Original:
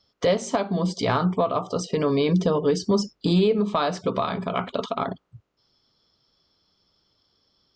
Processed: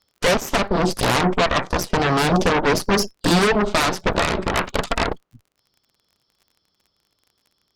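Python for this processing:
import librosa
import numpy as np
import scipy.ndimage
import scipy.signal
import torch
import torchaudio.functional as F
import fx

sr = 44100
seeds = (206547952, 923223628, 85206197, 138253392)

y = fx.cheby_harmonics(x, sr, harmonics=(7, 8), levels_db=(-27, -6), full_scale_db=-10.5)
y = fx.dmg_crackle(y, sr, seeds[0], per_s=37.0, level_db=-43.0)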